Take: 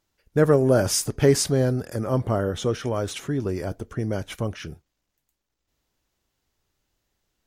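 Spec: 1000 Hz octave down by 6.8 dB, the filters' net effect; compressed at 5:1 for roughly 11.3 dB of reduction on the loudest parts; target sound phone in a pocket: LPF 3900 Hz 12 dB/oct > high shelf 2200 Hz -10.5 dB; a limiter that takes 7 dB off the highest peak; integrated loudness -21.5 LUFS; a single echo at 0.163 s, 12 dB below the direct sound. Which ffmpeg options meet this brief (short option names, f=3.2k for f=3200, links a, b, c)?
-af "equalizer=f=1k:t=o:g=-7.5,acompressor=threshold=-26dB:ratio=5,alimiter=limit=-23.5dB:level=0:latency=1,lowpass=3.9k,highshelf=f=2.2k:g=-10.5,aecho=1:1:163:0.251,volume=13dB"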